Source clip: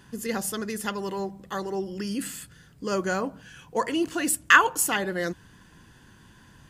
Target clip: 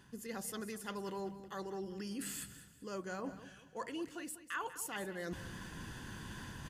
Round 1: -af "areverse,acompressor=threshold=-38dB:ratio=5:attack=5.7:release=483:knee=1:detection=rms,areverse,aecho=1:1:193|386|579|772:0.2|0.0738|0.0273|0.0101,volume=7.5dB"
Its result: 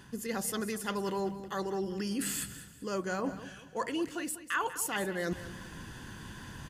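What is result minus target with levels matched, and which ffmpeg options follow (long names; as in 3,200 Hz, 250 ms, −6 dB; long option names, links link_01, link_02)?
downward compressor: peak gain reduction −8.5 dB
-af "areverse,acompressor=threshold=-48.5dB:ratio=5:attack=5.7:release=483:knee=1:detection=rms,areverse,aecho=1:1:193|386|579|772:0.2|0.0738|0.0273|0.0101,volume=7.5dB"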